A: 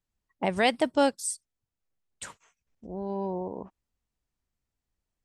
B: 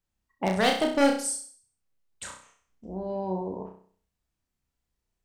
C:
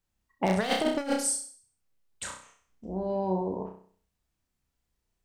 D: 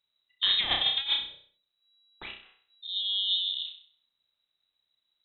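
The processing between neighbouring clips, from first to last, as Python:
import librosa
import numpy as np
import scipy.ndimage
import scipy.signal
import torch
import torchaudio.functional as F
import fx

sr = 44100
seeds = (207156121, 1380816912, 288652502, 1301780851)

y1 = 10.0 ** (-16.5 / 20.0) * (np.abs((x / 10.0 ** (-16.5 / 20.0) + 3.0) % 4.0 - 2.0) - 1.0)
y1 = fx.room_flutter(y1, sr, wall_m=5.5, rt60_s=0.49)
y2 = fx.over_compress(y1, sr, threshold_db=-25.0, ratio=-0.5)
y3 = fx.freq_invert(y2, sr, carrier_hz=3900)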